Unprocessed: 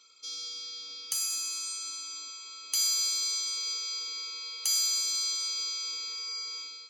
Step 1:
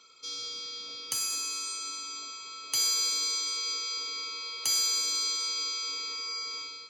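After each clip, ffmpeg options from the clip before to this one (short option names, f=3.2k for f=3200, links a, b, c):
-af "highshelf=f=2.7k:g=-11,volume=9dB"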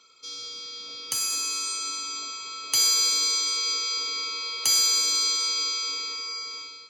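-af "dynaudnorm=f=250:g=9:m=6dB"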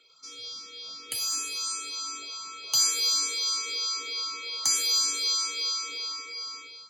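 -filter_complex "[0:a]asplit=2[a][b];[b]afreqshift=2.7[c];[a][c]amix=inputs=2:normalize=1"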